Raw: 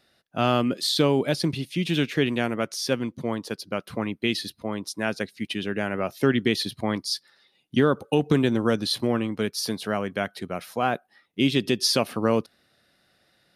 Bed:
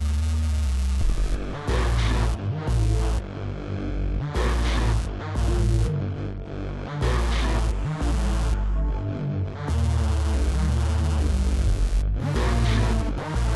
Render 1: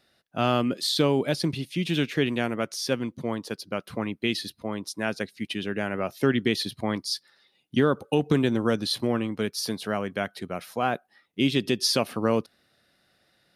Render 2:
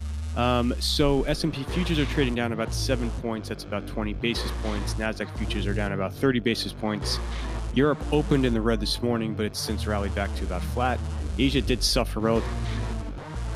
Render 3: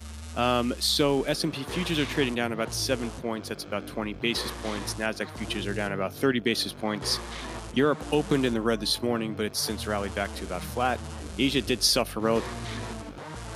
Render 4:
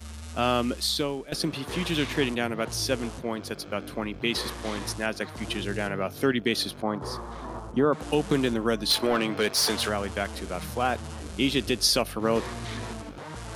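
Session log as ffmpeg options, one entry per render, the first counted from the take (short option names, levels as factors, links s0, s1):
-af "volume=0.841"
-filter_complex "[1:a]volume=0.398[s0];[0:a][s0]amix=inputs=2:normalize=0"
-af "highpass=f=220:p=1,highshelf=f=6600:g=5.5"
-filter_complex "[0:a]asettb=1/sr,asplit=3[s0][s1][s2];[s0]atrim=end=6.824[s3];[s1]atrim=start=6.82:end=7.93,asetpts=PTS-STARTPTS,afade=t=in:d=0.004:c=qsin,afade=t=out:st=1.106:d=0.004:c=qsin,highshelf=f=1600:t=q:w=1.5:g=-11.5[s4];[s2]atrim=start=7.926[s5];[s3][s4]acrossfade=d=0.004:c1=hsin:c2=qsin[s6];[s6][s5]acrossfade=d=0.004:c1=qsin:c2=hsin,asplit=3[s7][s8][s9];[s7]afade=t=out:st=8.89:d=0.02[s10];[s8]asplit=2[s11][s12];[s12]highpass=f=720:p=1,volume=7.08,asoftclip=type=tanh:threshold=0.211[s13];[s11][s13]amix=inputs=2:normalize=0,lowpass=f=6900:p=1,volume=0.501,afade=t=in:st=8.89:d=0.02,afade=t=out:st=9.88:d=0.02[s14];[s9]afade=t=in:st=9.88:d=0.02[s15];[s10][s14][s15]amix=inputs=3:normalize=0,asplit=2[s16][s17];[s16]atrim=end=1.32,asetpts=PTS-STARTPTS,afade=t=out:st=0.75:d=0.57:silence=0.141254[s18];[s17]atrim=start=1.32,asetpts=PTS-STARTPTS,afade=t=in:d=0.004:c=hsin:silence=0.141254[s19];[s18][s19]concat=n=2:v=0:a=1"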